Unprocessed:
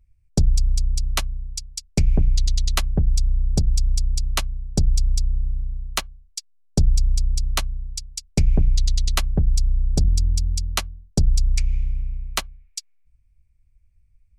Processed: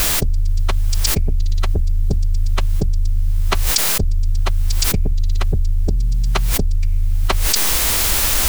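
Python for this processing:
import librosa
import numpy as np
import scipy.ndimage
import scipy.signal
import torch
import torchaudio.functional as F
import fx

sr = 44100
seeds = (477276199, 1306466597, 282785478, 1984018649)

y = fx.lowpass(x, sr, hz=1800.0, slope=6)
y = fx.peak_eq(y, sr, hz=400.0, db=5.5, octaves=0.63)
y = fx.dmg_noise_colour(y, sr, seeds[0], colour='white', level_db=-54.0)
y = fx.stretch_vocoder(y, sr, factor=0.59)
y = fx.env_flatten(y, sr, amount_pct=100)
y = y * 10.0 ** (-2.0 / 20.0)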